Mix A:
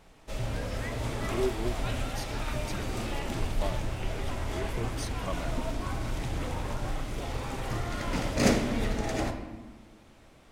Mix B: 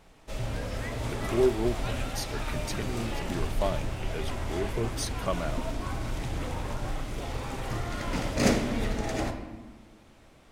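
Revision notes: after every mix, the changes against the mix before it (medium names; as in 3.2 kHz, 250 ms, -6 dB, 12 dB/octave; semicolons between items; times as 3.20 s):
speech +6.5 dB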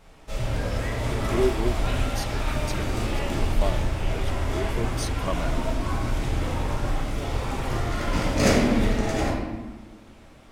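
background: send +10.0 dB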